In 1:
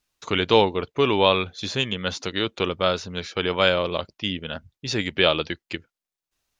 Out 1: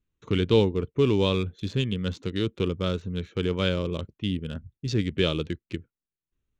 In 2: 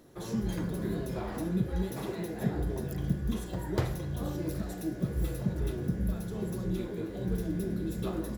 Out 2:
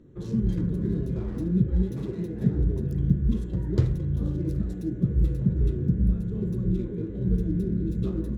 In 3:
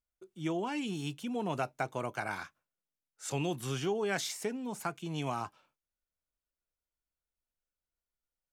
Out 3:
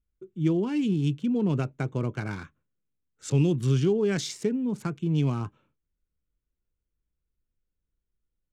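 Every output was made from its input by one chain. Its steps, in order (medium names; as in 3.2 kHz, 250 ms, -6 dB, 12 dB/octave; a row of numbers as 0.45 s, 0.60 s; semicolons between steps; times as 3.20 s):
local Wiener filter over 9 samples; FFT filter 120 Hz 0 dB, 450 Hz -8 dB, 720 Hz -23 dB, 1.1 kHz -17 dB, 2 kHz -16 dB, 2.9 kHz -14 dB, 4.4 kHz -11 dB, 7.2 kHz -12 dB, 12 kHz -22 dB; normalise loudness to -27 LUFS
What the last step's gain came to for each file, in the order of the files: +6.0 dB, +9.5 dB, +15.5 dB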